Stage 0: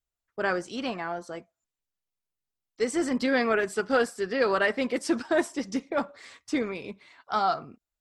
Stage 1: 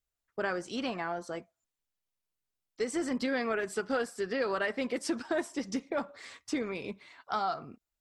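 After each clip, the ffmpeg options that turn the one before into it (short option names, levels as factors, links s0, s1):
-af "acompressor=threshold=0.0282:ratio=2.5"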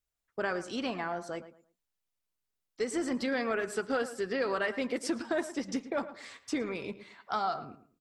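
-filter_complex "[0:a]asplit=2[s0][s1];[s1]adelay=111,lowpass=f=2300:p=1,volume=0.224,asplit=2[s2][s3];[s3]adelay=111,lowpass=f=2300:p=1,volume=0.27,asplit=2[s4][s5];[s5]adelay=111,lowpass=f=2300:p=1,volume=0.27[s6];[s0][s2][s4][s6]amix=inputs=4:normalize=0"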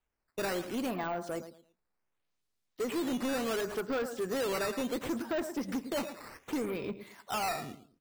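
-filter_complex "[0:a]asplit=2[s0][s1];[s1]adynamicsmooth=sensitivity=2:basefreq=1100,volume=0.631[s2];[s0][s2]amix=inputs=2:normalize=0,acrusher=samples=8:mix=1:aa=0.000001:lfo=1:lforange=12.8:lforate=0.69,asoftclip=type=tanh:threshold=0.0376"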